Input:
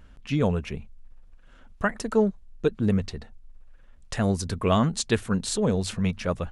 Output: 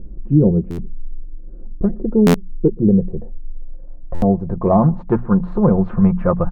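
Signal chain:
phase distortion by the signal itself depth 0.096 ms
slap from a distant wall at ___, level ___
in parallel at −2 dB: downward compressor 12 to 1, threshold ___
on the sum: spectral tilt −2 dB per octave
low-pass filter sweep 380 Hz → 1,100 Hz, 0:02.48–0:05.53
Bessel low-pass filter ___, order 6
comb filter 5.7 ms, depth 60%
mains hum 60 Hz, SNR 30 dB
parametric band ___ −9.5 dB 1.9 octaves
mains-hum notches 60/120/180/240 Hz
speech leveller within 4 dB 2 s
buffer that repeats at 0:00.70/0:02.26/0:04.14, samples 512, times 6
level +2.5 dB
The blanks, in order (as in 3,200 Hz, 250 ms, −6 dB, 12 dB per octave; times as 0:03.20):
21 metres, −30 dB, −37 dBFS, 6,600 Hz, 4,700 Hz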